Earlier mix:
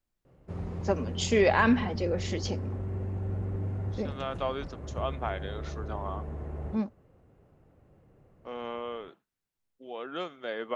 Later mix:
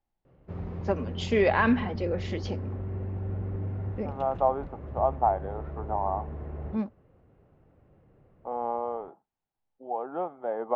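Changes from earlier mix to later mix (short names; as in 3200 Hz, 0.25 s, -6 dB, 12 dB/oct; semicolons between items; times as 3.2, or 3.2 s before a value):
second voice: add synth low-pass 820 Hz, resonance Q 6.3; master: add LPF 3400 Hz 12 dB/oct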